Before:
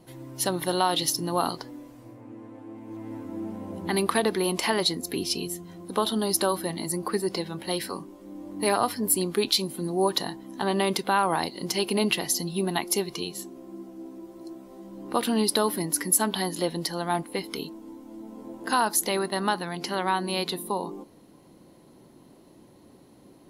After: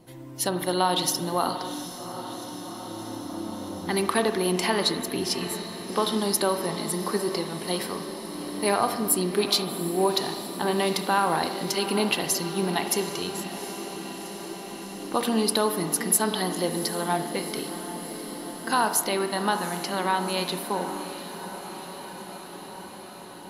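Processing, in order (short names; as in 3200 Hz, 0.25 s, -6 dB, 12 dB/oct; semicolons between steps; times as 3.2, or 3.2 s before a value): diffused feedback echo 0.77 s, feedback 75%, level -12 dB; spring tank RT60 1.3 s, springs 44 ms, chirp 40 ms, DRR 8 dB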